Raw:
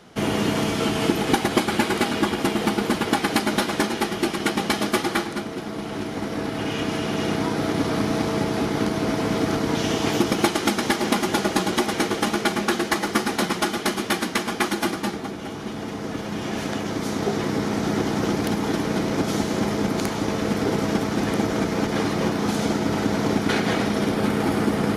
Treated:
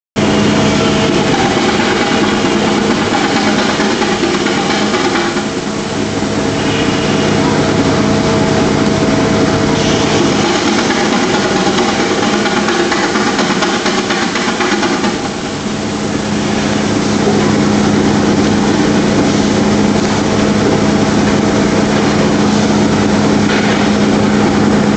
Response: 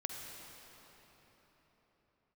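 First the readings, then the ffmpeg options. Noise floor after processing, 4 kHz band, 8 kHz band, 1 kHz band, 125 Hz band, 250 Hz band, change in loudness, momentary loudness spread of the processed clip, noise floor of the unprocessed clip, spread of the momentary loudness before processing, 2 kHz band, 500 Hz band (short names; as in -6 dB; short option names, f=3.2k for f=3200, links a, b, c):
-17 dBFS, +12.0 dB, +11.5 dB, +11.0 dB, +12.5 dB, +12.0 dB, +11.5 dB, 3 LU, -32 dBFS, 6 LU, +11.5 dB, +11.5 dB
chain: -filter_complex "[0:a]aresample=16000,acrusher=bits=5:mix=0:aa=0.000001,aresample=44100[a];[1:a]atrim=start_sample=2205,atrim=end_sample=6174[b];[a][b]afir=irnorm=-1:irlink=0,alimiter=level_in=15.5dB:limit=-1dB:release=50:level=0:latency=1,volume=-1dB"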